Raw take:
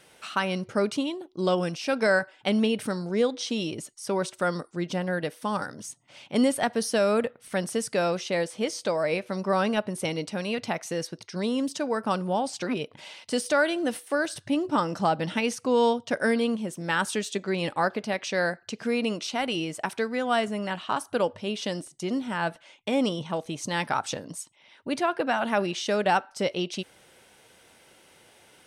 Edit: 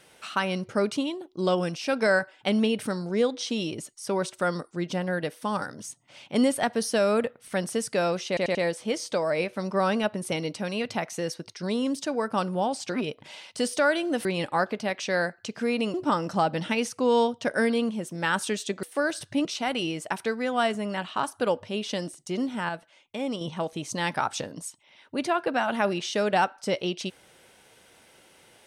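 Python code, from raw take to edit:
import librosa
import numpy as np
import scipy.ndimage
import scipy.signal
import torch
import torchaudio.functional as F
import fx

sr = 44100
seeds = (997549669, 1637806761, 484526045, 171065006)

y = fx.edit(x, sr, fx.stutter(start_s=8.28, slice_s=0.09, count=4),
    fx.swap(start_s=13.98, length_s=0.62, other_s=17.49, other_length_s=1.69),
    fx.clip_gain(start_s=22.42, length_s=0.72, db=-6.0), tone=tone)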